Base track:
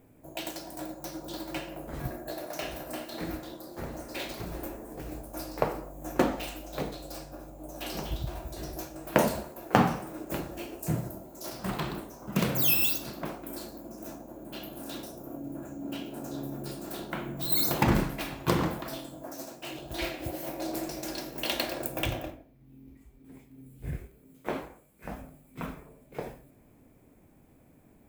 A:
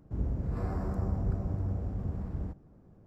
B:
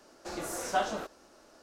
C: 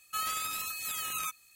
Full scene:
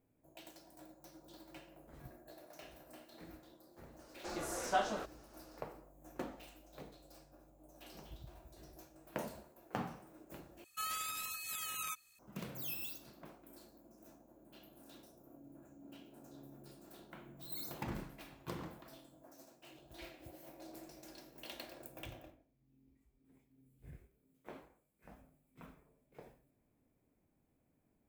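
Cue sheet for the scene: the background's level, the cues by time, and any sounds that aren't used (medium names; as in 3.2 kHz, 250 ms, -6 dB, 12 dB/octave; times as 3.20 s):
base track -18.5 dB
3.99 s: add B -4 dB + treble shelf 10 kHz -4 dB
10.64 s: replace with C -6.5 dB
not used: A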